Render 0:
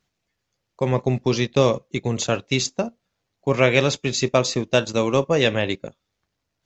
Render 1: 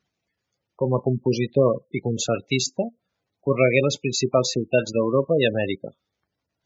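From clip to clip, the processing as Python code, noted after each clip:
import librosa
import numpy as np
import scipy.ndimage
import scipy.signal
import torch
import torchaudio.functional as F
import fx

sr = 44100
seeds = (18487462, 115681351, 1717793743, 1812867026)

y = fx.highpass(x, sr, hz=90.0, slope=6)
y = fx.spec_gate(y, sr, threshold_db=-15, keep='strong')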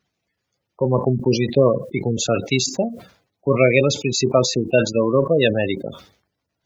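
y = fx.sustainer(x, sr, db_per_s=120.0)
y = y * 10.0 ** (3.0 / 20.0)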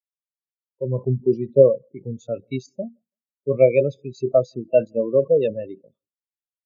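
y = fx.echo_feedback(x, sr, ms=165, feedback_pct=44, wet_db=-20.5)
y = fx.spectral_expand(y, sr, expansion=2.5)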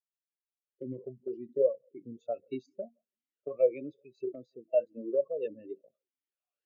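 y = fx.recorder_agc(x, sr, target_db=-7.5, rise_db_per_s=18.0, max_gain_db=30)
y = fx.vowel_sweep(y, sr, vowels='a-i', hz=1.7)
y = y * 10.0 ** (-7.0 / 20.0)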